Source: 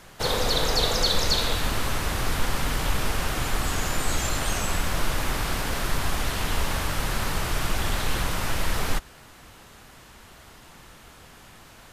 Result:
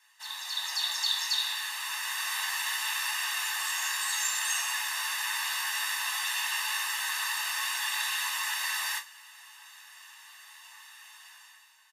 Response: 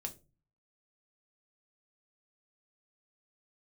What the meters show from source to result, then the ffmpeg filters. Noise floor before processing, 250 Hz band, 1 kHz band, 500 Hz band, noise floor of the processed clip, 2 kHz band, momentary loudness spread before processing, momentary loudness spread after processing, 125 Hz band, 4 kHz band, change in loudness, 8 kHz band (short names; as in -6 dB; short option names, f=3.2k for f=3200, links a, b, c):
-49 dBFS, under -40 dB, -6.5 dB, -28.5 dB, -55 dBFS, +0.5 dB, 5 LU, 21 LU, under -40 dB, -1.5 dB, -2.5 dB, 0.0 dB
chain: -filter_complex "[0:a]highpass=f=1.2k:w=0.5412,highpass=f=1.2k:w=1.3066,aecho=1:1:1.1:0.98,dynaudnorm=f=130:g=9:m=12.5dB,flanger=delay=8.1:depth=3:regen=61:speed=0.63:shape=sinusoidal[a];[1:a]atrim=start_sample=2205[b];[a][b]afir=irnorm=-1:irlink=0,volume=-7.5dB"